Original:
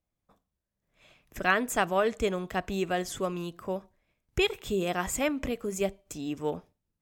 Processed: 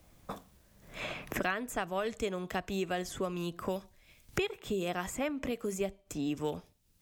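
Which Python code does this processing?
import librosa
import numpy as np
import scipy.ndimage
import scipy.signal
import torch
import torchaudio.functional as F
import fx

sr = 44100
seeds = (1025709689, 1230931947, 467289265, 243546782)

y = fx.band_squash(x, sr, depth_pct=100)
y = y * 10.0 ** (-5.5 / 20.0)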